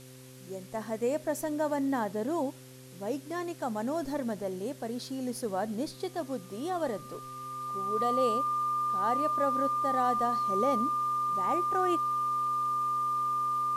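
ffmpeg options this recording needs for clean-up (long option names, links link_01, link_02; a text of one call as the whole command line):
ffmpeg -i in.wav -af "adeclick=threshold=4,bandreject=frequency=129.1:width_type=h:width=4,bandreject=frequency=258.2:width_type=h:width=4,bandreject=frequency=387.3:width_type=h:width=4,bandreject=frequency=516.4:width_type=h:width=4,bandreject=frequency=1200:width=30,afwtdn=0.002" out.wav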